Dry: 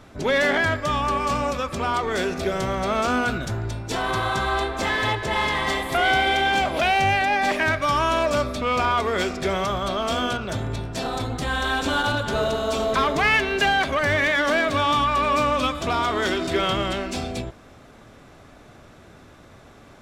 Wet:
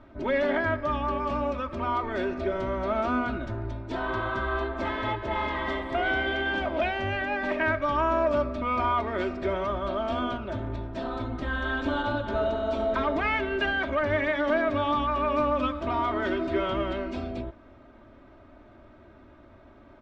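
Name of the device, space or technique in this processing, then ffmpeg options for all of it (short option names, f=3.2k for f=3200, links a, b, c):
phone in a pocket: -af "lowpass=3.4k,highshelf=f=2.4k:g=-10.5,aecho=1:1:3.2:0.67,volume=-5dB"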